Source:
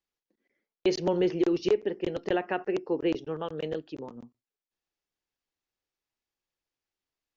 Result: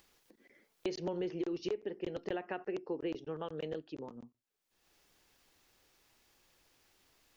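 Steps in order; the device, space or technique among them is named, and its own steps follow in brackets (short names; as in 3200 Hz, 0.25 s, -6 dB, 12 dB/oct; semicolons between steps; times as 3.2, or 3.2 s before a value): upward and downward compression (upward compressor, threshold -43 dBFS; compressor 3:1, threshold -30 dBFS, peak gain reduction 8.5 dB); gain -5 dB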